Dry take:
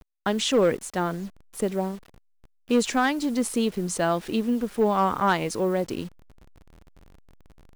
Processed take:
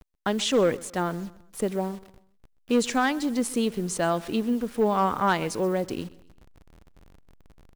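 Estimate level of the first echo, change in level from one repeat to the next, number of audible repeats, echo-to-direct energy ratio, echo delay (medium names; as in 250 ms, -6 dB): -20.5 dB, -8.0 dB, 2, -20.0 dB, 129 ms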